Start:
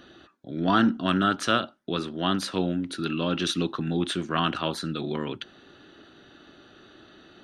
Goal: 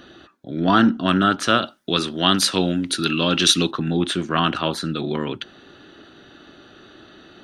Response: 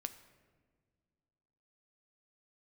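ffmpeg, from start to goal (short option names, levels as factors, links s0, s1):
-filter_complex "[0:a]asettb=1/sr,asplit=3[s0][s1][s2];[s0]atrim=end=1.624[s3];[s1]atrim=start=1.62:end=3.71,asetpts=PTS-STARTPTS,afade=t=in:d=0.004:c=qsin,afade=t=out:st=2.086:d=0.004:c=qsin,highshelf=f=2600:g=11.5[s4];[s2]atrim=start=3.706[s5];[s3][s4]acrossfade=d=0.004:c1=hsin:c2=qsin[s6];[s6][s5]acrossfade=d=0.004:c1=qsin:c2=hsin,volume=1.88"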